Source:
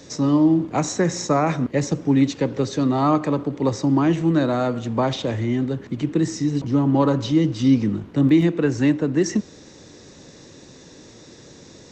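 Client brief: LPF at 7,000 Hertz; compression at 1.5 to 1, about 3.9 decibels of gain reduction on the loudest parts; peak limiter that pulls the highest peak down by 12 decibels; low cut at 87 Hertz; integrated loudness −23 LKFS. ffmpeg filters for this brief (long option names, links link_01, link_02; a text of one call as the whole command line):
ffmpeg -i in.wav -af "highpass=87,lowpass=7000,acompressor=threshold=-23dB:ratio=1.5,volume=7dB,alimiter=limit=-15dB:level=0:latency=1" out.wav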